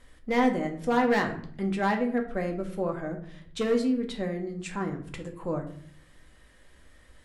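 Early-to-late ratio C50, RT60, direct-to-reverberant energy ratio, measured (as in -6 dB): 10.5 dB, 0.60 s, 2.5 dB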